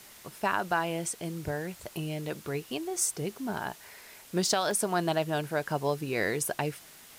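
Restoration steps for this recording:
repair the gap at 0:04.71, 1.8 ms
broadband denoise 24 dB, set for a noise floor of −52 dBFS

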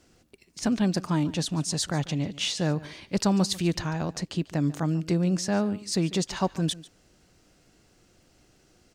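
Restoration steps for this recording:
click removal
echo removal 144 ms −19 dB

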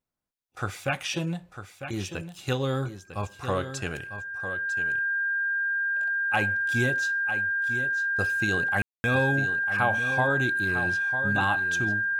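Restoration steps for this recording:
notch filter 1,600 Hz, Q 30
ambience match 0:08.82–0:09.04
echo removal 950 ms −10 dB

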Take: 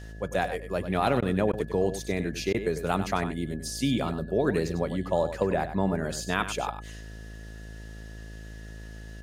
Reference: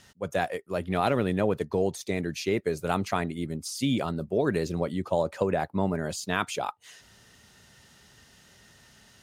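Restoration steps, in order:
hum removal 54.1 Hz, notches 13
notch filter 1,700 Hz, Q 30
repair the gap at 0:01.21/0:01.52/0:02.53, 12 ms
echo removal 98 ms −10.5 dB

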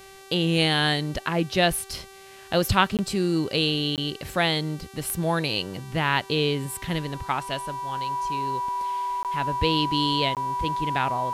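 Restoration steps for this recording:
click removal
hum removal 388.2 Hz, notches 33
notch filter 980 Hz, Q 30
repair the gap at 0:02.97/0:03.96/0:09.23/0:10.35, 18 ms

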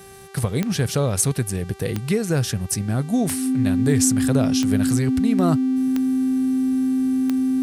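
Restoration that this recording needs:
click removal
hum removal 390.6 Hz, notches 31
notch filter 260 Hz, Q 30

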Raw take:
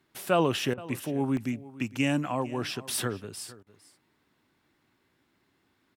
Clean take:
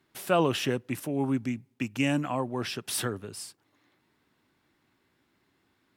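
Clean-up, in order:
repair the gap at 0:01.37/0:01.74, 1 ms
repair the gap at 0:00.74/0:03.63, 35 ms
echo removal 455 ms −18.5 dB

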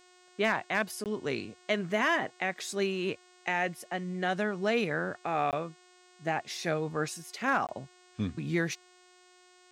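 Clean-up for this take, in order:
clipped peaks rebuilt −16.5 dBFS
hum removal 362.3 Hz, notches 24
repair the gap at 0:01.04/0:05.51/0:07.67, 18 ms

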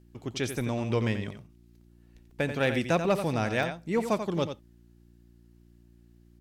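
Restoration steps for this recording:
clipped peaks rebuilt −17 dBFS
hum removal 58.4 Hz, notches 6
repair the gap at 0:01.81/0:02.31/0:03.63, 2.8 ms
echo removal 88 ms −9 dB

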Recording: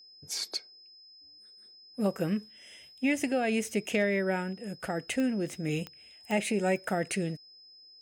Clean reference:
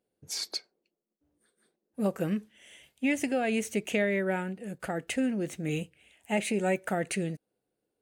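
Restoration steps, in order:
clipped peaks rebuilt −17 dBFS
click removal
notch filter 5,100 Hz, Q 30

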